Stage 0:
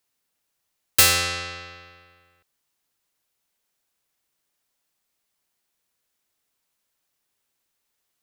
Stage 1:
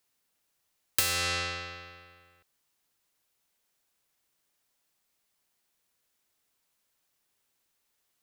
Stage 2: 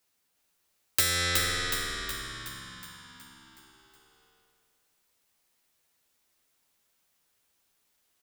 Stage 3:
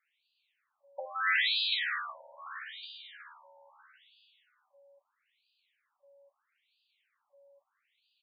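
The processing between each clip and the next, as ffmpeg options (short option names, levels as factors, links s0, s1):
-af "acompressor=threshold=0.0631:ratio=10"
-filter_complex "[0:a]asplit=2[s0][s1];[s1]adelay=12,volume=0.708[s2];[s0][s2]amix=inputs=2:normalize=0,asplit=9[s3][s4][s5][s6][s7][s8][s9][s10][s11];[s4]adelay=369,afreqshift=-68,volume=0.631[s12];[s5]adelay=738,afreqshift=-136,volume=0.355[s13];[s6]adelay=1107,afreqshift=-204,volume=0.197[s14];[s7]adelay=1476,afreqshift=-272,volume=0.111[s15];[s8]adelay=1845,afreqshift=-340,volume=0.0624[s16];[s9]adelay=2214,afreqshift=-408,volume=0.0347[s17];[s10]adelay=2583,afreqshift=-476,volume=0.0195[s18];[s11]adelay=2952,afreqshift=-544,volume=0.0108[s19];[s3][s12][s13][s14][s15][s16][s17][s18][s19]amix=inputs=9:normalize=0"
-af "aeval=exprs='val(0)+0.000631*sin(2*PI*560*n/s)':c=same,afftfilt=real='re*between(b*sr/1024,680*pow(3500/680,0.5+0.5*sin(2*PI*0.77*pts/sr))/1.41,680*pow(3500/680,0.5+0.5*sin(2*PI*0.77*pts/sr))*1.41)':imag='im*between(b*sr/1024,680*pow(3500/680,0.5+0.5*sin(2*PI*0.77*pts/sr))/1.41,680*pow(3500/680,0.5+0.5*sin(2*PI*0.77*pts/sr))*1.41)':win_size=1024:overlap=0.75,volume=2"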